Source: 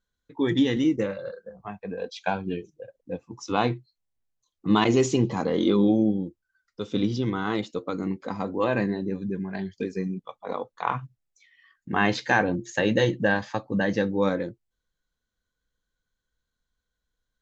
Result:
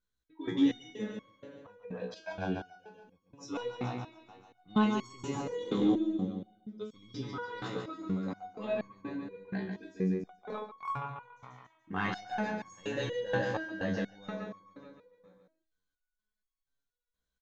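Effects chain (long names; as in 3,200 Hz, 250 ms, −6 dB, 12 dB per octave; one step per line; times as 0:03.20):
repeating echo 142 ms, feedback 59%, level −6 dB
0:10.13–0:10.95: transient designer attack +12 dB, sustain −4 dB
in parallel at −4 dB: soft clipping −15.5 dBFS, distortion −13 dB
on the sum: step-sequenced resonator 4.2 Hz 62–1,100 Hz
level −3 dB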